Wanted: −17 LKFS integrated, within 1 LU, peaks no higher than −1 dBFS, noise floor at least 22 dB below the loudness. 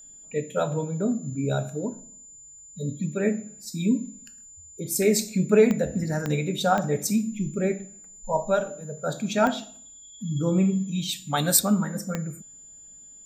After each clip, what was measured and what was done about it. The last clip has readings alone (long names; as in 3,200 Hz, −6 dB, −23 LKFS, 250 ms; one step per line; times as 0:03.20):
number of clicks 5; interfering tone 7,100 Hz; level of the tone −45 dBFS; integrated loudness −25.5 LKFS; sample peak −6.5 dBFS; target loudness −17.0 LKFS
→ click removal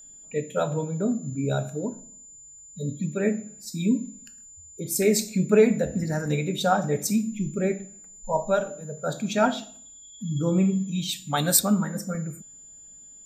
number of clicks 0; interfering tone 7,100 Hz; level of the tone −45 dBFS
→ notch filter 7,100 Hz, Q 30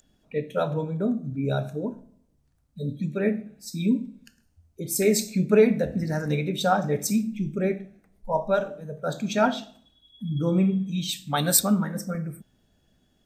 interfering tone none found; integrated loudness −25.5 LKFS; sample peak −5.5 dBFS; target loudness −17.0 LKFS
→ level +8.5 dB
brickwall limiter −1 dBFS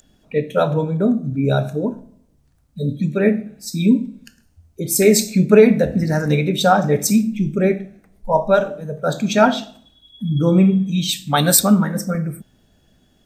integrated loudness −17.5 LKFS; sample peak −1.0 dBFS; background noise floor −59 dBFS